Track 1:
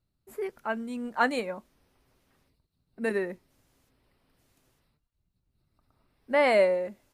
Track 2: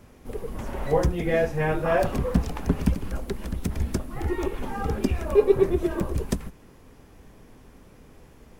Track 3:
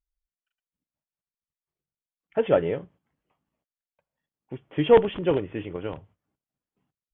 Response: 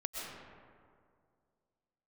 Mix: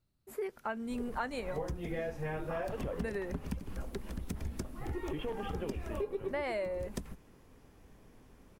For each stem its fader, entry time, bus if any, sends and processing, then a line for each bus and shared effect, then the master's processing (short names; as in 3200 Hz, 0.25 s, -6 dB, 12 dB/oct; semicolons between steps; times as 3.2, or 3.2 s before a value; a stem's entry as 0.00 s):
0.0 dB, 0.00 s, no send, dry
-8.5 dB, 0.65 s, no send, dry
-11.0 dB, 0.35 s, no send, limiter -15.5 dBFS, peak gain reduction 9 dB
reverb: off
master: compressor 8:1, threshold -33 dBFS, peak gain reduction 15 dB